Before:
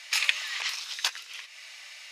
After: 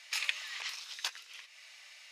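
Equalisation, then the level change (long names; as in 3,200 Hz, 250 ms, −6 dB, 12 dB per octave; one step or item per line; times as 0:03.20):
low-shelf EQ 330 Hz +4 dB
−8.5 dB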